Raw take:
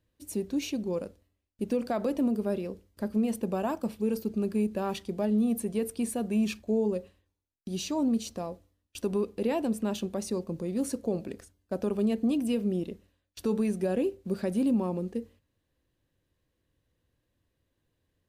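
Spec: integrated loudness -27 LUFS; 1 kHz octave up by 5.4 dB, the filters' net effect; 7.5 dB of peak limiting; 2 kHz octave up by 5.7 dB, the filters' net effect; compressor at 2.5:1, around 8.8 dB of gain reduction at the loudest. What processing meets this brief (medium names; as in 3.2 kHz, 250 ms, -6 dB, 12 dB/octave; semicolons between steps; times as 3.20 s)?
peaking EQ 1 kHz +6 dB; peaking EQ 2 kHz +6 dB; compression 2.5:1, threshold -36 dBFS; trim +13 dB; peak limiter -17.5 dBFS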